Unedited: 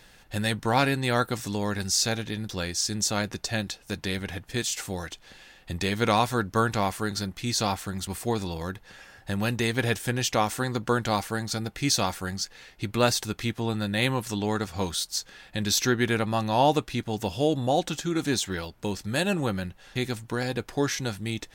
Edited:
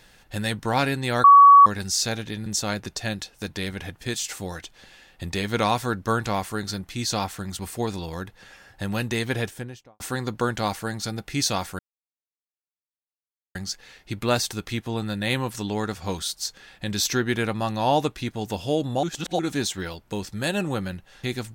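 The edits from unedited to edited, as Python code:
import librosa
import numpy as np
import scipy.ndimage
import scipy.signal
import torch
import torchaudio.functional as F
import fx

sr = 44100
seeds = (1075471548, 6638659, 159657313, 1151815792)

y = fx.studio_fade_out(x, sr, start_s=9.73, length_s=0.75)
y = fx.edit(y, sr, fx.bleep(start_s=1.24, length_s=0.42, hz=1130.0, db=-7.0),
    fx.cut(start_s=2.46, length_s=0.48),
    fx.insert_silence(at_s=12.27, length_s=1.76),
    fx.reverse_span(start_s=17.75, length_s=0.36), tone=tone)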